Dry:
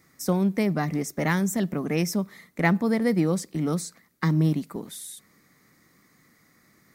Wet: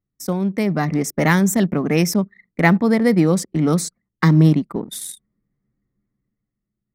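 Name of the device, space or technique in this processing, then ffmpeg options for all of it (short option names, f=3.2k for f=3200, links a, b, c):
voice memo with heavy noise removal: -af "anlmdn=0.631,dynaudnorm=f=120:g=13:m=9dB,volume=1dB"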